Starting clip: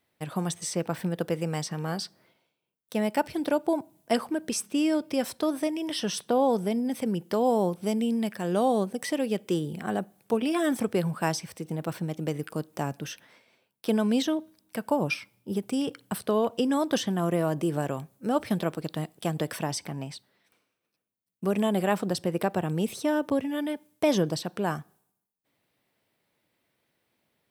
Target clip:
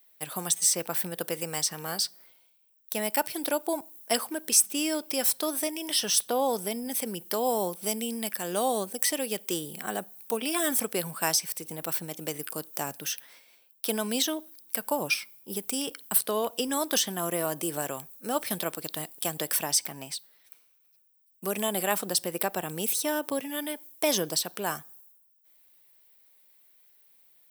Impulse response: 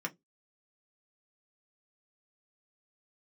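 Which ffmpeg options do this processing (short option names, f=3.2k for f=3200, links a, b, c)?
-af "aemphasis=mode=production:type=riaa,volume=-1dB"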